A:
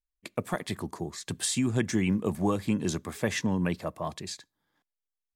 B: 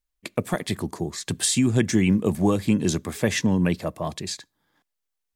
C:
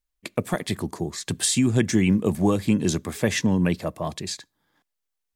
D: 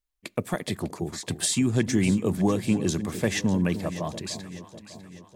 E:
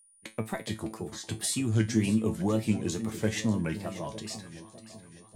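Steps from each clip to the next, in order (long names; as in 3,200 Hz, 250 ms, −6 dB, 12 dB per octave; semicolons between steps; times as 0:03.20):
dynamic equaliser 1,100 Hz, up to −5 dB, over −46 dBFS, Q 1; level +7 dB
no processing that can be heard
delay that swaps between a low-pass and a high-pass 300 ms, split 890 Hz, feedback 71%, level −11 dB; level −3 dB
tape wow and flutter 140 cents; steady tone 9,500 Hz −51 dBFS; tuned comb filter 110 Hz, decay 0.22 s, harmonics all, mix 80%; level +2 dB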